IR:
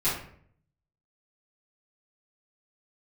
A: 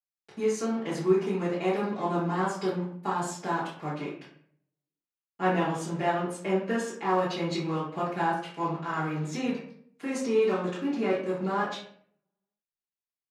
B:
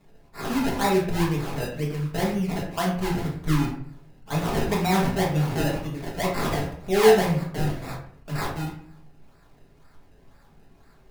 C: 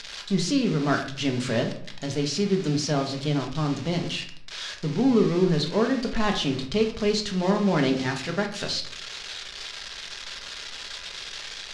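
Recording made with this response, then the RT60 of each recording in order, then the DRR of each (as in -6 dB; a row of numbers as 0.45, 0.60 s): A; 0.60, 0.60, 0.60 s; -14.5, -5.0, 2.0 dB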